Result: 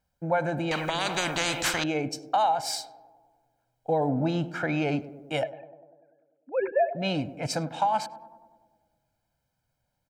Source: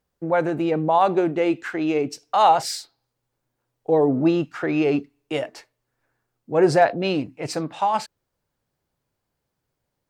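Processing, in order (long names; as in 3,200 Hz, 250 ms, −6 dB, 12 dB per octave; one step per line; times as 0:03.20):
0:05.43–0:06.95: three sine waves on the formant tracks
comb filter 1.3 ms, depth 72%
downward compressor 12 to 1, threshold −18 dBFS, peak gain reduction 13.5 dB
on a send: tape delay 100 ms, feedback 80%, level −13.5 dB, low-pass 1,000 Hz
0:00.71–0:01.84: on the sum: every bin compressed towards the loudest bin 4 to 1
level −2.5 dB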